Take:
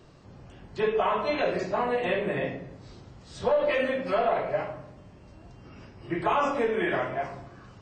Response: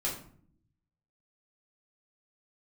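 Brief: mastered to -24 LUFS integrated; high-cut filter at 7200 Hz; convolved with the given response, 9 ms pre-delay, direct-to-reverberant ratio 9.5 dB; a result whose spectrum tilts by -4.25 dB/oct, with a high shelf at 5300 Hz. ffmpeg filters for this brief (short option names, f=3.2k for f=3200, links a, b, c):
-filter_complex "[0:a]lowpass=7.2k,highshelf=f=5.3k:g=-8.5,asplit=2[a][b];[1:a]atrim=start_sample=2205,adelay=9[c];[b][c]afir=irnorm=-1:irlink=0,volume=-14.5dB[d];[a][d]amix=inputs=2:normalize=0,volume=3.5dB"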